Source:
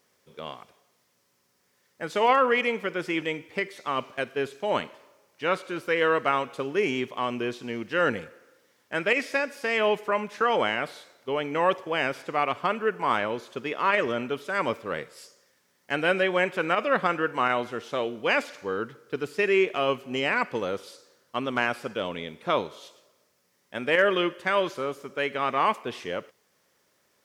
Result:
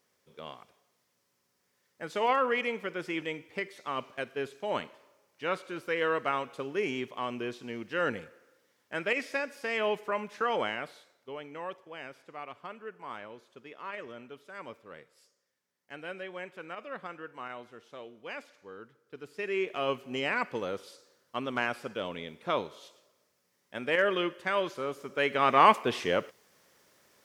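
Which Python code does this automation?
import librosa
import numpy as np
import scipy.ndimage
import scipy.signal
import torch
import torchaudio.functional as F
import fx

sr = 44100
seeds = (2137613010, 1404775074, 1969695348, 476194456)

y = fx.gain(x, sr, db=fx.line((10.59, -6.0), (11.76, -17.0), (19.0, -17.0), (19.89, -5.0), (24.75, -5.0), (25.64, 4.0)))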